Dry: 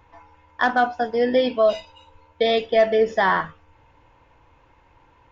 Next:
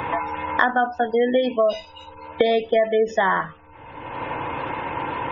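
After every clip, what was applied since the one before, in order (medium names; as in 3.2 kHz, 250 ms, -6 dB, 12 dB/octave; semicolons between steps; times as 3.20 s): spectral gate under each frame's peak -30 dB strong; three bands compressed up and down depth 100%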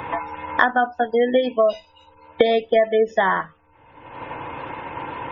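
upward expansion 1.5:1, over -39 dBFS; trim +3 dB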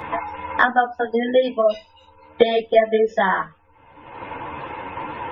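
three-phase chorus; trim +3.5 dB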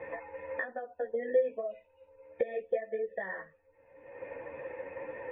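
compression 6:1, threshold -22 dBFS, peak gain reduction 13.5 dB; cascade formant filter e; trim +1 dB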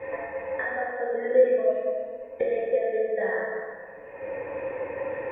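plate-style reverb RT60 2.2 s, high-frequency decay 0.6×, DRR -5 dB; trim +3 dB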